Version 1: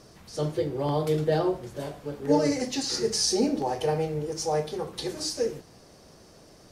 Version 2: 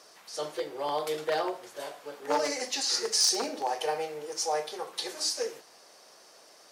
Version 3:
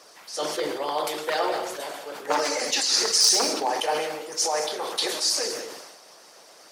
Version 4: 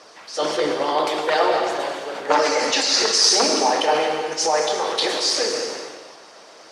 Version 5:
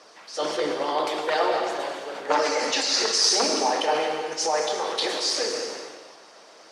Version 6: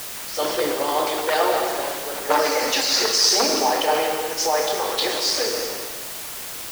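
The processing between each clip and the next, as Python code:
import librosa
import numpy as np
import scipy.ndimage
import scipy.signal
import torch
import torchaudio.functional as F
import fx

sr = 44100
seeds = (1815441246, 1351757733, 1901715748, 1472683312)

y1 = np.minimum(x, 2.0 * 10.0 ** (-18.0 / 20.0) - x)
y1 = scipy.signal.sosfilt(scipy.signal.butter(2, 700.0, 'highpass', fs=sr, output='sos'), y1)
y1 = y1 * 10.0 ** (2.0 / 20.0)
y2 = fx.rev_gated(y1, sr, seeds[0], gate_ms=240, shape='flat', drr_db=5.0)
y2 = fx.hpss(y2, sr, part='harmonic', gain_db=-12)
y2 = fx.sustainer(y2, sr, db_per_s=42.0)
y2 = y2 * 10.0 ** (8.5 / 20.0)
y3 = fx.air_absorb(y2, sr, metres=87.0)
y3 = fx.rev_gated(y3, sr, seeds[1], gate_ms=400, shape='flat', drr_db=5.5)
y3 = y3 * 10.0 ** (6.5 / 20.0)
y4 = scipy.signal.sosfilt(scipy.signal.butter(2, 130.0, 'highpass', fs=sr, output='sos'), y3)
y4 = y4 * 10.0 ** (-4.5 / 20.0)
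y5 = fx.quant_dither(y4, sr, seeds[2], bits=6, dither='triangular')
y5 = y5 * 10.0 ** (3.0 / 20.0)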